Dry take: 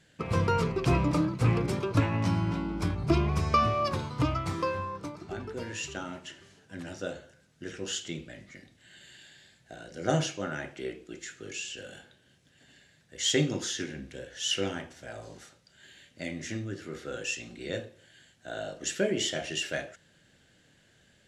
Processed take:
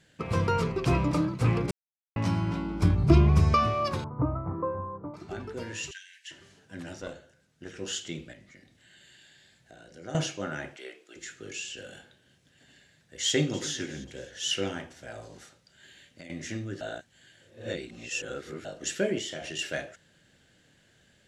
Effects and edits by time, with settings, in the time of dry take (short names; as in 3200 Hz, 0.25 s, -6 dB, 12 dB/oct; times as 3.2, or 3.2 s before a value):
1.71–2.16 mute
2.82–3.54 low shelf 280 Hz +9.5 dB
4.04–5.14 inverse Chebyshev low-pass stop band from 4900 Hz, stop band 70 dB
5.91–6.31 brick-wall FIR high-pass 1500 Hz
7.01–7.76 tube stage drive 25 dB, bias 0.7
8.33–10.15 compressor 1.5:1, threshold -58 dBFS
10.76–11.16 HPF 640 Hz
13.26–13.77 echo throw 0.27 s, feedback 45%, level -17 dB
15.25–16.3 compressor, threshold -42 dBFS
16.81–18.65 reverse
19.18–19.59 compressor 3:1, threshold -34 dBFS